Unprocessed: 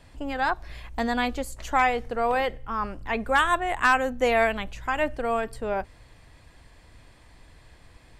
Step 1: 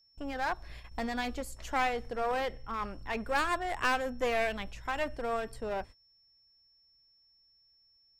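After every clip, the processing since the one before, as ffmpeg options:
-af "agate=range=-28dB:threshold=-39dB:ratio=16:detection=peak,aeval=exprs='clip(val(0),-1,0.0531)':c=same,aeval=exprs='val(0)+0.00126*sin(2*PI*5400*n/s)':c=same,volume=-6dB"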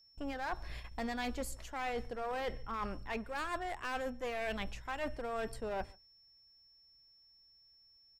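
-filter_complex "[0:a]areverse,acompressor=threshold=-37dB:ratio=6,areverse,asplit=2[a][b];[b]adelay=139.9,volume=-26dB,highshelf=f=4k:g=-3.15[c];[a][c]amix=inputs=2:normalize=0,volume=2dB"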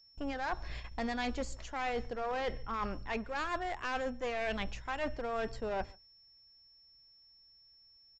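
-af "aresample=16000,aresample=44100,volume=2.5dB"

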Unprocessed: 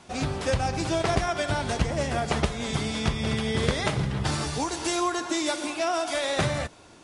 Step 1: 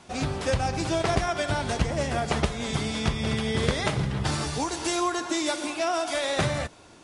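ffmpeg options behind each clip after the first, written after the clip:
-af anull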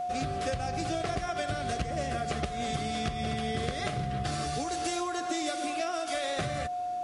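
-af "aeval=exprs='val(0)+0.0398*sin(2*PI*720*n/s)':c=same,acompressor=threshold=-26dB:ratio=6,asuperstop=centerf=920:order=4:qfactor=3.8,volume=-2dB"

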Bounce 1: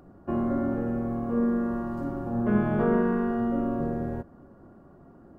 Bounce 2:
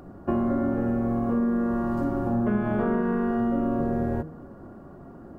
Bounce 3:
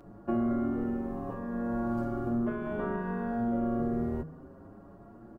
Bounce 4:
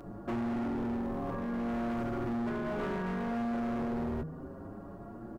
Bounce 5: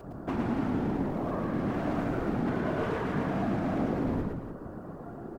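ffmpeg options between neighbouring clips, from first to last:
-af "bandreject=f=156.9:t=h:w=4,bandreject=f=313.8:t=h:w=4,bandreject=f=470.7:t=h:w=4,acompressor=threshold=-29dB:ratio=6,volume=7.5dB"
-filter_complex "[0:a]asplit=2[a][b];[b]adelay=6.8,afreqshift=0.6[c];[a][c]amix=inputs=2:normalize=1,volume=-3dB"
-filter_complex "[0:a]asplit=2[a][b];[b]acompressor=threshold=-40dB:ratio=6,volume=-1dB[c];[a][c]amix=inputs=2:normalize=0,asoftclip=type=hard:threshold=-31.5dB"
-filter_complex "[0:a]afftfilt=real='hypot(re,im)*cos(2*PI*random(0))':imag='hypot(re,im)*sin(2*PI*random(1))':win_size=512:overlap=0.75,asplit=2[a][b];[b]aecho=0:1:113|291:0.668|0.299[c];[a][c]amix=inputs=2:normalize=0,volume=8dB"

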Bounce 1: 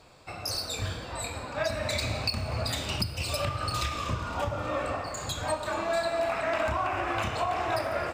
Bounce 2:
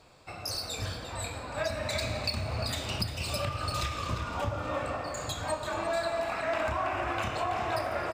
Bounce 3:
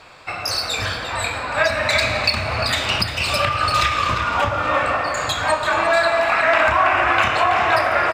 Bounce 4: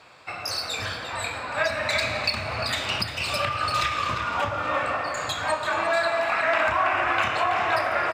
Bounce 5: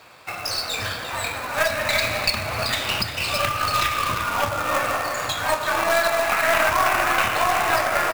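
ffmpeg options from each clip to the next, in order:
-filter_complex "[0:a]asplit=2[a][b];[b]adelay=349.9,volume=-7dB,highshelf=f=4k:g=-7.87[c];[a][c]amix=inputs=2:normalize=0,volume=-2.5dB"
-af "equalizer=f=1.8k:t=o:w=2.7:g=13,volume=6dB"
-af "highpass=83,volume=-6.5dB"
-af "aeval=exprs='0.316*(cos(1*acos(clip(val(0)/0.316,-1,1)))-cos(1*PI/2))+0.0794*(cos(2*acos(clip(val(0)/0.316,-1,1)))-cos(2*PI/2))':c=same,acrusher=bits=2:mode=log:mix=0:aa=0.000001,volume=2.5dB"

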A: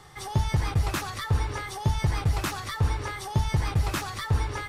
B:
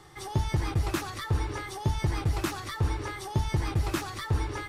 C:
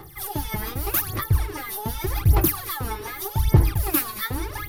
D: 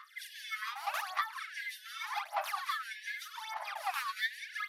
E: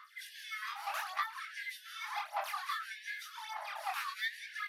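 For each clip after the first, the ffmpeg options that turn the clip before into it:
-af "equalizer=f=330:w=3.6:g=9.5,volume=-3dB"
-af "aexciter=amount=13.9:drive=6.7:freq=11k,aphaser=in_gain=1:out_gain=1:delay=4.7:decay=0.79:speed=0.84:type=sinusoidal,volume=-1dB"
-af "alimiter=limit=-15dB:level=0:latency=1:release=18,adynamicsmooth=sensitivity=0.5:basefreq=4k,afftfilt=real='re*gte(b*sr/1024,560*pow(1600/560,0.5+0.5*sin(2*PI*0.74*pts/sr)))':imag='im*gte(b*sr/1024,560*pow(1600/560,0.5+0.5*sin(2*PI*0.74*pts/sr)))':win_size=1024:overlap=0.75"
-af "flanger=delay=19:depth=6.7:speed=0.66,volume=1dB"

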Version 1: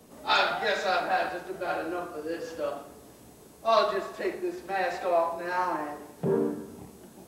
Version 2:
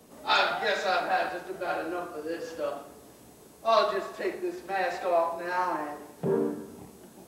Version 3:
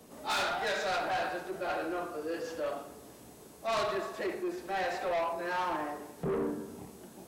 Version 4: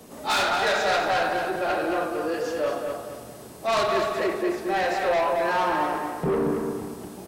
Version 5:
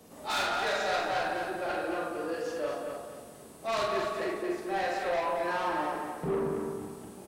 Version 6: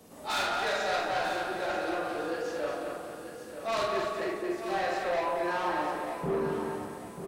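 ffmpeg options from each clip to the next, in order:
-af "lowshelf=f=150:g=-4"
-af "asoftclip=type=tanh:threshold=-28dB"
-filter_complex "[0:a]asplit=2[a][b];[b]adelay=225,lowpass=f=4.4k:p=1,volume=-4.5dB,asplit=2[c][d];[d]adelay=225,lowpass=f=4.4k:p=1,volume=0.38,asplit=2[e][f];[f]adelay=225,lowpass=f=4.4k:p=1,volume=0.38,asplit=2[g][h];[h]adelay=225,lowpass=f=4.4k:p=1,volume=0.38,asplit=2[i][j];[j]adelay=225,lowpass=f=4.4k:p=1,volume=0.38[k];[a][c][e][g][i][k]amix=inputs=6:normalize=0,volume=8dB"
-filter_complex "[0:a]asplit=2[a][b];[b]adelay=46,volume=-4dB[c];[a][c]amix=inputs=2:normalize=0,volume=-8.5dB"
-af "aecho=1:1:937|1874|2811:0.316|0.0917|0.0266"

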